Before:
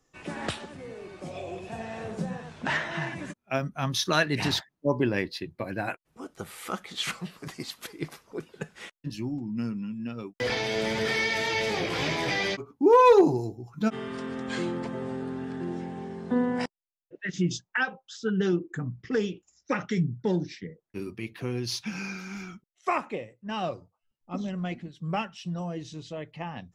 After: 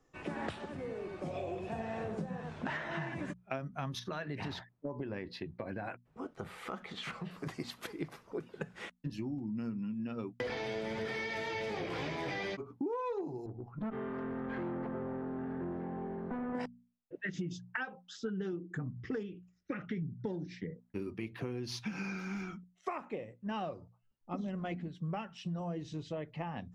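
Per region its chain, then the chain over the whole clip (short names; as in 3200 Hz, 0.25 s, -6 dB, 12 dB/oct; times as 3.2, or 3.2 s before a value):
3.99–7.31 high shelf 6600 Hz -11.5 dB + notch 320 Hz, Q 9.6 + compressor 3:1, threshold -36 dBFS
13.46–16.55 tube stage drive 32 dB, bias 0.35 + Chebyshev low-pass 1600 Hz
19.23–20.03 Chebyshev low-pass 2500 Hz + bell 810 Hz -10.5 dB 1.1 oct + notch 960 Hz, Q 5.6
whole clip: high shelf 3000 Hz -11.5 dB; notches 60/120/180/240 Hz; compressor 12:1, threshold -36 dBFS; gain +1.5 dB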